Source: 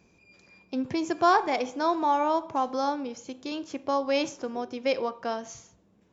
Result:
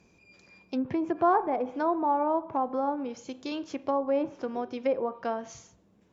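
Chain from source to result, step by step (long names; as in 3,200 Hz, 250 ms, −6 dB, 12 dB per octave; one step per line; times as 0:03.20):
treble cut that deepens with the level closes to 990 Hz, closed at −24 dBFS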